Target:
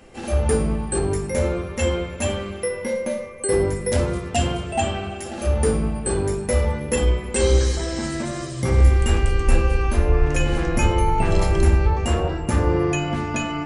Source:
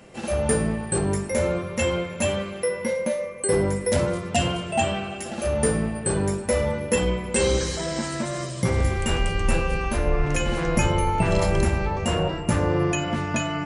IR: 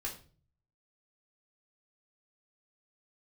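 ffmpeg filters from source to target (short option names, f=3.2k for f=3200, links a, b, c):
-filter_complex "[0:a]asplit=2[a][b];[1:a]atrim=start_sample=2205,lowshelf=f=230:g=9[c];[b][c]afir=irnorm=-1:irlink=0,volume=-4.5dB[d];[a][d]amix=inputs=2:normalize=0,volume=-3dB"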